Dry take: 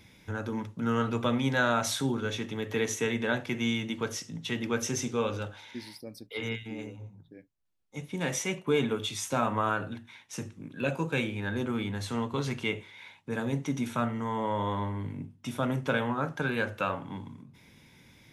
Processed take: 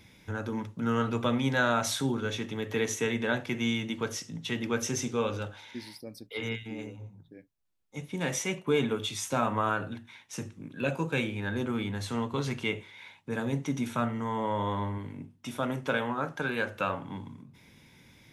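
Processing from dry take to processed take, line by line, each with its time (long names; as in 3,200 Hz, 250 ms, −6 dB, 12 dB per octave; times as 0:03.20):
0:14.98–0:16.75: parametric band 110 Hz −5.5 dB 2.1 octaves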